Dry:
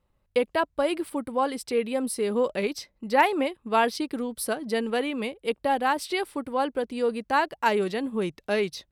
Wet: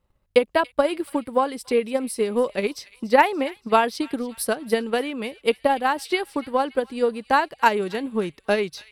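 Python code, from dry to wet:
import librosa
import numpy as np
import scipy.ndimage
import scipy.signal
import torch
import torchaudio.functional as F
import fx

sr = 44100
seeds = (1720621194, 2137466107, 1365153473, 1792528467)

y = fx.transient(x, sr, attack_db=8, sustain_db=0)
y = fx.echo_wet_highpass(y, sr, ms=286, feedback_pct=49, hz=2100.0, wet_db=-16.5)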